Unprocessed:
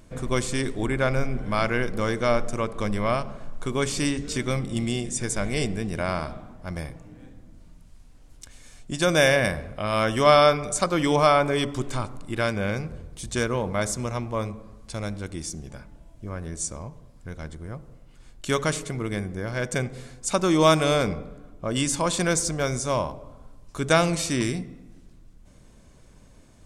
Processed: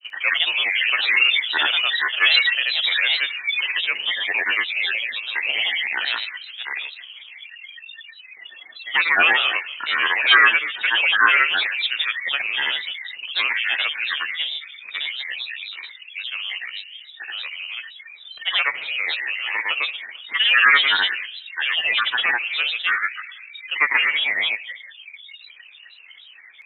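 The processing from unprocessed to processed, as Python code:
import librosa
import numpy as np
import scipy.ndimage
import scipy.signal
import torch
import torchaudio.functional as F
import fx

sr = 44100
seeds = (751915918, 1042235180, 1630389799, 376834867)

y = fx.freq_invert(x, sr, carrier_hz=2700)
y = fx.highpass(y, sr, hz=1300.0, slope=6)
y = fx.granulator(y, sr, seeds[0], grain_ms=100.0, per_s=27.0, spray_ms=100.0, spread_st=7)
y = F.gain(torch.from_numpy(y), 7.5).numpy()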